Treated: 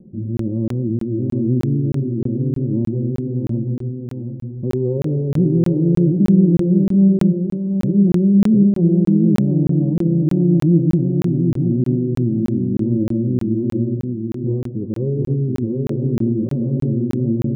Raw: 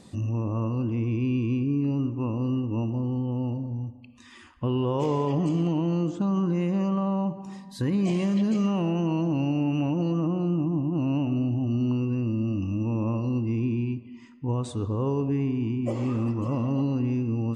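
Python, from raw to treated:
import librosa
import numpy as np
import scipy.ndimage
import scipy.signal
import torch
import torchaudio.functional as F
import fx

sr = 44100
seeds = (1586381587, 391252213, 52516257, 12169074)

y = scipy.signal.sosfilt(scipy.signal.cheby2(4, 70, 1900.0, 'lowpass', fs=sr, output='sos'), x)
y = y + 0.73 * np.pad(y, (int(5.5 * sr / 1000.0), 0))[:len(y)]
y = fx.rotary_switch(y, sr, hz=1.0, then_hz=5.5, switch_at_s=15.51)
y = fx.echo_feedback(y, sr, ms=729, feedback_pct=27, wet_db=-4.0)
y = fx.buffer_crackle(y, sr, first_s=0.37, period_s=0.31, block=1024, kind='zero')
y = F.gain(torch.from_numpy(y), 8.0).numpy()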